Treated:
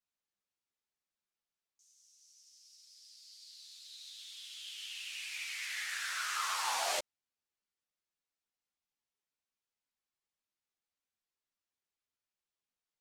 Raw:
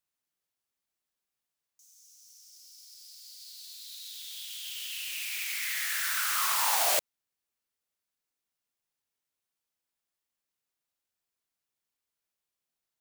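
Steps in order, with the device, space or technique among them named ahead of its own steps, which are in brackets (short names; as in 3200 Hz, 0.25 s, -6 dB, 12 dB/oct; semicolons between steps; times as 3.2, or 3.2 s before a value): string-machine ensemble chorus (ensemble effect; LPF 7300 Hz 12 dB/oct); gain -2 dB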